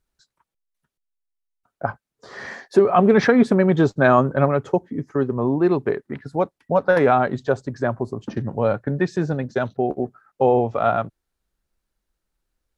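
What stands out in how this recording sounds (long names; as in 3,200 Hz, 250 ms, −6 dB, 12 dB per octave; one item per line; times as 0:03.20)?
background noise floor −83 dBFS
spectral slope −4.0 dB per octave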